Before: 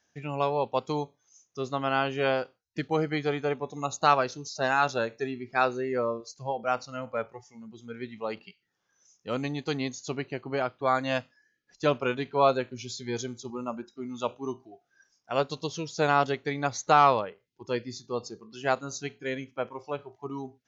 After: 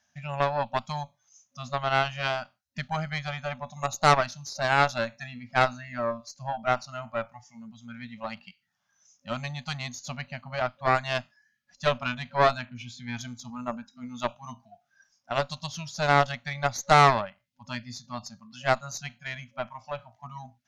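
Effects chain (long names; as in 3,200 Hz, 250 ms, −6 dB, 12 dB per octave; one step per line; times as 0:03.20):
0:12.65–0:13.21: high shelf with overshoot 3,600 Hz −8.5 dB, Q 1.5
brick-wall band-stop 250–550 Hz
harmonic generator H 4 −12 dB, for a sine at −8.5 dBFS
level +1 dB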